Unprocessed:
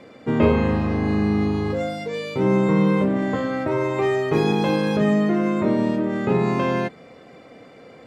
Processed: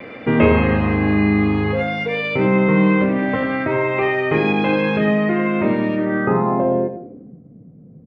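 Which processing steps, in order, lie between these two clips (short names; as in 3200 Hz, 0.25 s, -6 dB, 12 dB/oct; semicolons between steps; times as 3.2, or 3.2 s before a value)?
in parallel at +2.5 dB: compressor, threshold -29 dBFS, peak gain reduction 15.5 dB; on the sum: low-pass sweep 2400 Hz -> 170 Hz, 5.96–7.42; vocal rider 2 s; vibrato 0.62 Hz 15 cents; echo 88 ms -10 dB; on a send at -13 dB: reverb RT60 0.35 s, pre-delay 55 ms; on the sum: gain -1 dB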